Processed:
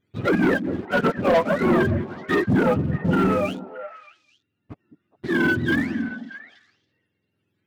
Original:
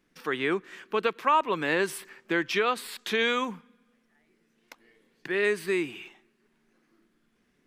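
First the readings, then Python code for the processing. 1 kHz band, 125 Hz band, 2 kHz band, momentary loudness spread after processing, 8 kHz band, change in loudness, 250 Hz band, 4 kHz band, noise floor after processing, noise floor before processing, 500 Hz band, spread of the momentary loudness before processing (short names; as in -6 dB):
+2.0 dB, +20.0 dB, +4.5 dB, 17 LU, n/a, +6.0 dB, +12.5 dB, -3.0 dB, -76 dBFS, -71 dBFS, +6.0 dB, 11 LU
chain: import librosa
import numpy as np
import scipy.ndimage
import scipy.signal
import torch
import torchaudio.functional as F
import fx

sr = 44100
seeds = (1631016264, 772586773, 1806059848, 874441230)

p1 = fx.octave_mirror(x, sr, pivot_hz=790.0)
p2 = fx.rider(p1, sr, range_db=10, speed_s=2.0)
p3 = fx.env_lowpass_down(p2, sr, base_hz=1400.0, full_db=-24.5)
p4 = fx.leveller(p3, sr, passes=3)
y = p4 + fx.echo_stepped(p4, sr, ms=208, hz=250.0, octaves=1.4, feedback_pct=70, wet_db=-7.5, dry=0)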